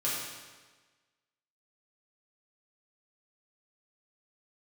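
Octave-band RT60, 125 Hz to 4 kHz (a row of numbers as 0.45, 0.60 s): 1.3, 1.3, 1.4, 1.3, 1.3, 1.2 s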